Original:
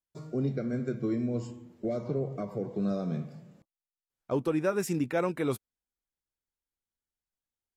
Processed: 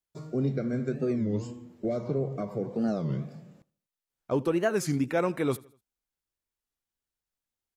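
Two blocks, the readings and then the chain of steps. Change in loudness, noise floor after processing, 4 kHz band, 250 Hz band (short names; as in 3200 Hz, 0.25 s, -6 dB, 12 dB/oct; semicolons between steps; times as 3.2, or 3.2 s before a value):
+2.0 dB, under -85 dBFS, +3.5 dB, +1.5 dB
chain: on a send: feedback echo 81 ms, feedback 42%, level -22.5 dB; on the sum: record warp 33 1/3 rpm, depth 250 cents; gain +2 dB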